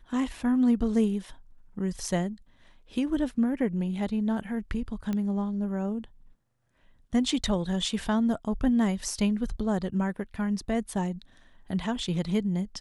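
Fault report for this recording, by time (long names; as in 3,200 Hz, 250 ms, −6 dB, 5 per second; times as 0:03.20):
0:05.13: click −19 dBFS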